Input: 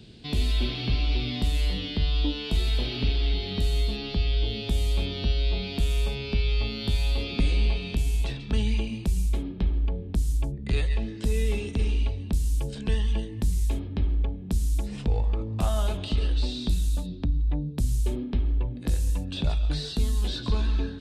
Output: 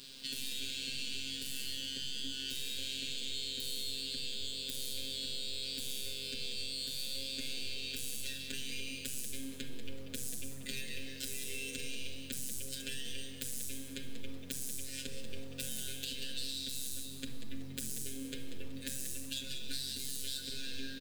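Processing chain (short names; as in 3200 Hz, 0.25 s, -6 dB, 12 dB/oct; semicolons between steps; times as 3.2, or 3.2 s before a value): tracing distortion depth 0.056 ms; pre-emphasis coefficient 0.9; FFT band-reject 580–1400 Hz; bell 82 Hz -8.5 dB 2 oct; compressor 8:1, threshold -49 dBFS, peak gain reduction 13 dB; robotiser 134 Hz; requantised 12-bit, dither none; frequency-shifting echo 0.188 s, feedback 33%, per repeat +87 Hz, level -9.5 dB; reverb RT60 0.95 s, pre-delay 4 ms, DRR 4.5 dB; gain +12.5 dB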